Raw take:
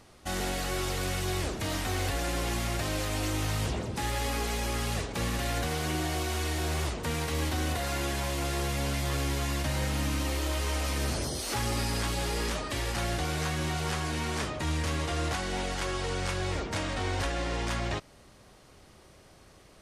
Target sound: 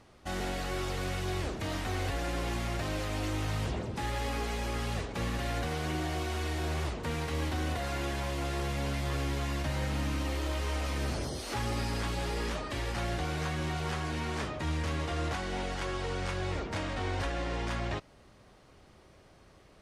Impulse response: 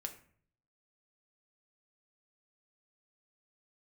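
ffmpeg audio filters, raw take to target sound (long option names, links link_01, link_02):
-af "highshelf=frequency=5700:gain=-10.5,volume=-2dB" -ar 48000 -c:a libopus -b:a 64k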